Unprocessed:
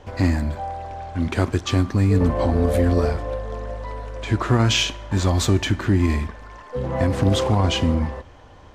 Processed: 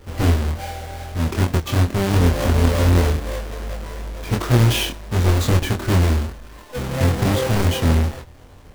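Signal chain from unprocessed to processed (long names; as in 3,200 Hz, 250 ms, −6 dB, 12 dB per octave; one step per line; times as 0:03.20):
each half-wave held at its own peak
in parallel at −9.5 dB: decimation without filtering 33×
on the sum: chorus effect 2.7 Hz, depth 3.1 ms
level −2.5 dB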